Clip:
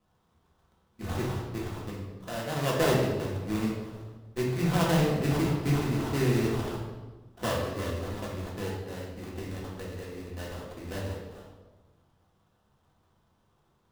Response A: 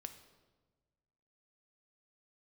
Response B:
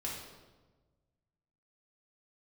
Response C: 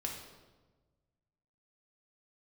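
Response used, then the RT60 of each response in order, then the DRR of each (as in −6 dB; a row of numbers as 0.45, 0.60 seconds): B; 1.3, 1.3, 1.3 seconds; 7.5, −4.5, −0.5 decibels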